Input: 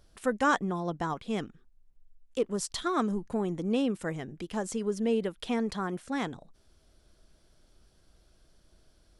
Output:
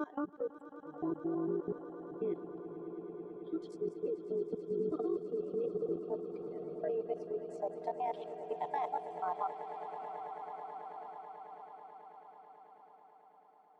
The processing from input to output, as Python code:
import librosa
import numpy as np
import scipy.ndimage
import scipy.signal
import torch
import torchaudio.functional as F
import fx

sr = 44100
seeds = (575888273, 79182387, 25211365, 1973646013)

p1 = fx.block_reorder(x, sr, ms=82.0, group=7)
p2 = fx.low_shelf(p1, sr, hz=96.0, db=-9.5)
p3 = fx.echo_diffused(p2, sr, ms=1105, feedback_pct=59, wet_db=-10)
p4 = fx.filter_sweep_bandpass(p3, sr, from_hz=370.0, to_hz=780.0, start_s=3.06, end_s=5.57, q=4.3)
p5 = fx.rider(p4, sr, range_db=4, speed_s=0.5)
p6 = p4 + (p5 * librosa.db_to_amplitude(-1.0))
p7 = fx.noise_reduce_blind(p6, sr, reduce_db=15)
p8 = fx.stretch_grains(p7, sr, factor=1.5, grain_ms=40.0)
p9 = fx.level_steps(p8, sr, step_db=20)
p10 = p9 + fx.echo_swell(p9, sr, ms=109, loudest=8, wet_db=-16.0, dry=0)
y = p10 * librosa.db_to_amplitude(5.5)